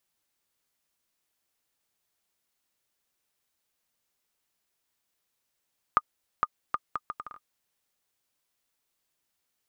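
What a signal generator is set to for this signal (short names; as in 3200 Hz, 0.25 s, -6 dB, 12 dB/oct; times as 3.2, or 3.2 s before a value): bouncing ball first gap 0.46 s, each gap 0.68, 1220 Hz, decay 42 ms -8.5 dBFS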